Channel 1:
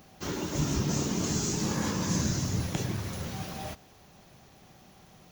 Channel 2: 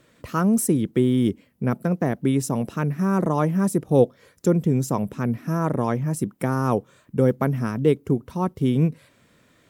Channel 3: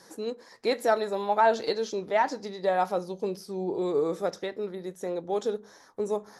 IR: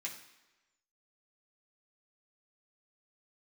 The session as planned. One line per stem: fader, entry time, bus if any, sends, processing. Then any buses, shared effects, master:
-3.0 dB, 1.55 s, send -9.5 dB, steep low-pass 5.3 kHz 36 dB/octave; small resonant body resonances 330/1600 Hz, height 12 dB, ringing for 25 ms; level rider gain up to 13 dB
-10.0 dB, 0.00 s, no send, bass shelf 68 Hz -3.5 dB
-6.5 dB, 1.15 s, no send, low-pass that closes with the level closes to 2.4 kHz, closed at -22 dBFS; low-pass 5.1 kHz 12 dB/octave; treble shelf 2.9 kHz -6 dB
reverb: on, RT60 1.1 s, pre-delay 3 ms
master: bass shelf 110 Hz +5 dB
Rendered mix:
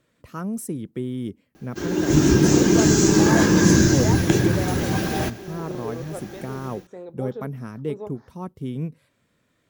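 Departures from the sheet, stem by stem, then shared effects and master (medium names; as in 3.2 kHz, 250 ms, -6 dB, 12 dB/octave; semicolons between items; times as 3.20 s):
stem 1: missing steep low-pass 5.3 kHz 36 dB/octave; stem 3: entry 1.15 s -> 1.90 s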